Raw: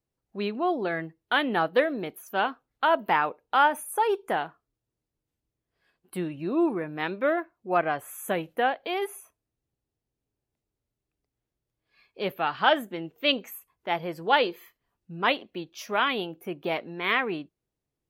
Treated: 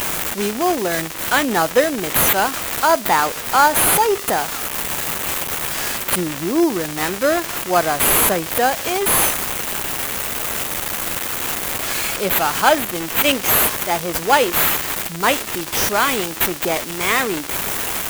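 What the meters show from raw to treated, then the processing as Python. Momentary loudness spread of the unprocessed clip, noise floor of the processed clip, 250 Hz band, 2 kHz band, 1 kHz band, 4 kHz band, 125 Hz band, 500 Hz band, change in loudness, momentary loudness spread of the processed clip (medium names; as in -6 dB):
12 LU, -29 dBFS, +8.0 dB, +9.0 dB, +8.0 dB, +10.5 dB, +11.0 dB, +8.0 dB, +9.5 dB, 7 LU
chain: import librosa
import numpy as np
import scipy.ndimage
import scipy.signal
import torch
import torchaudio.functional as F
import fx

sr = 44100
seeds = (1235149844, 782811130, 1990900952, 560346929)

p1 = x + 0.5 * 10.0 ** (-16.5 / 20.0) * np.diff(np.sign(x), prepend=np.sign(x[:1]))
p2 = fx.sample_hold(p1, sr, seeds[0], rate_hz=5600.0, jitter_pct=0)
p3 = p1 + (p2 * 10.0 ** (-3.0 / 20.0))
y = p3 * 10.0 ** (3.0 / 20.0)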